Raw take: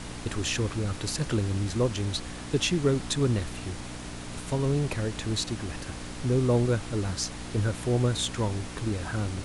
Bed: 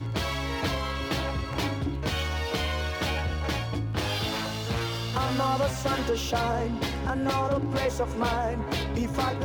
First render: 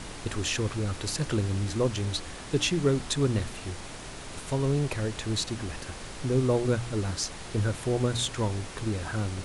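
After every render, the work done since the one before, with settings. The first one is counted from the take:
hum removal 60 Hz, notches 5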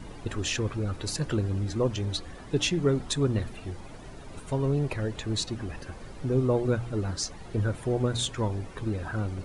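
broadband denoise 13 dB, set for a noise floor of −41 dBFS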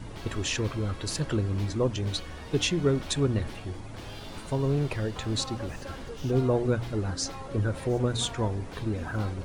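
mix in bed −15 dB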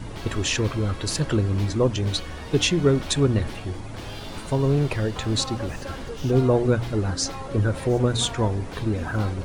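level +5.5 dB

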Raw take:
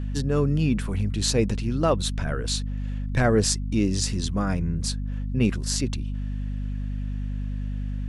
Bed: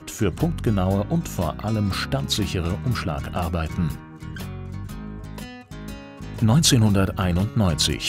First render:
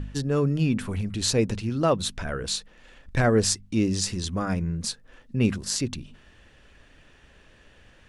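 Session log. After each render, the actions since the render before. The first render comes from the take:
hum removal 50 Hz, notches 5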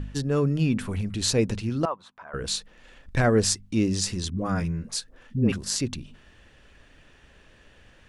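0:01.85–0:02.34: resonant band-pass 1,000 Hz, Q 3.2
0:04.30–0:05.52: all-pass dispersion highs, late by 86 ms, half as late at 570 Hz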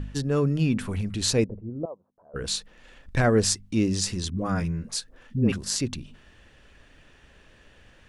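0:01.44–0:02.36: transistor ladder low-pass 670 Hz, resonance 40%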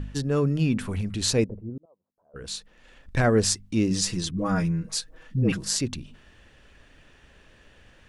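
0:01.78–0:03.23: fade in
0:03.90–0:05.79: comb filter 6.3 ms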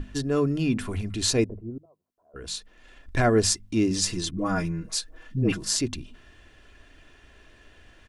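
mains-hum notches 50/100/150 Hz
comb filter 2.9 ms, depth 42%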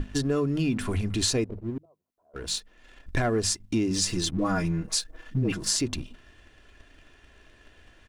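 leveller curve on the samples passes 1
downward compressor 10 to 1, threshold −22 dBFS, peak gain reduction 9.5 dB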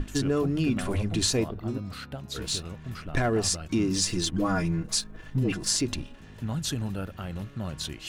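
mix in bed −14 dB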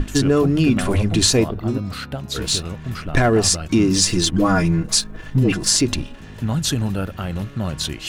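level +9.5 dB
brickwall limiter −2 dBFS, peak gain reduction 1 dB

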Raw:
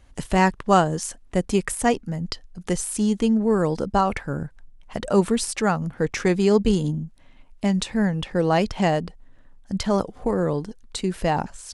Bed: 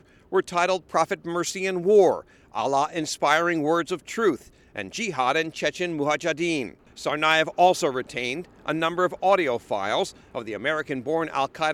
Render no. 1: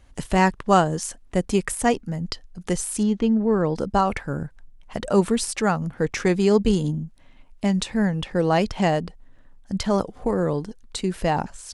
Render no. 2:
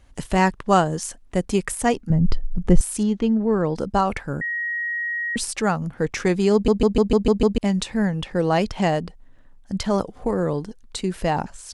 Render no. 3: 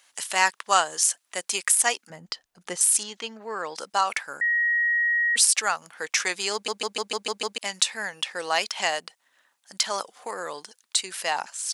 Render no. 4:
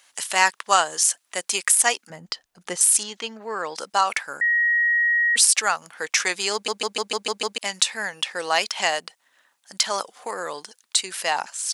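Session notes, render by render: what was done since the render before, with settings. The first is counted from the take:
0:03.03–0:03.76: high-frequency loss of the air 160 metres
0:02.10–0:02.81: spectral tilt −4 dB per octave; 0:04.41–0:05.36: beep over 1,890 Hz −23 dBFS; 0:06.53: stutter in place 0.15 s, 7 plays
high-pass filter 970 Hz 12 dB per octave; high-shelf EQ 2,700 Hz +11 dB
level +3 dB; brickwall limiter −3 dBFS, peak gain reduction 2.5 dB

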